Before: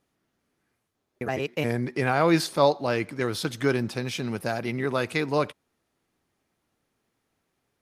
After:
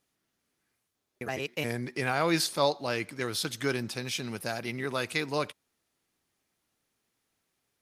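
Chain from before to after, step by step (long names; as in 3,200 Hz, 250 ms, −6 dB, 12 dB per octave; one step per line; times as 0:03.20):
high-shelf EQ 2,100 Hz +10 dB
level −7 dB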